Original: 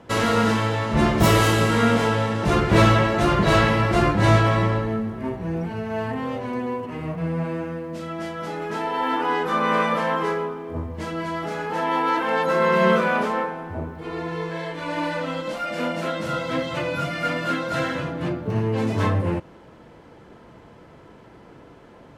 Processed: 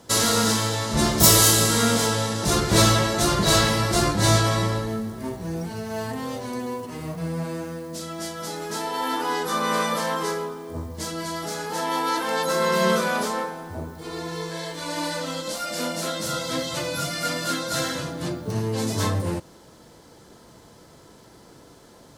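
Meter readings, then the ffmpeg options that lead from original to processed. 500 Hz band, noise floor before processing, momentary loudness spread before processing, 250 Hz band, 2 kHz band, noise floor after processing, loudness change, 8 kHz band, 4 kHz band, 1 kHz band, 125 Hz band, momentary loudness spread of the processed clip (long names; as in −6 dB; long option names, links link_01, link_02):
−3.0 dB, −48 dBFS, 13 LU, −3.0 dB, −3.0 dB, −50 dBFS, −0.5 dB, +15.0 dB, +6.5 dB, −3.0 dB, −3.0 dB, 14 LU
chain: -af "aexciter=amount=7.8:drive=3.5:freq=3800,volume=-3dB"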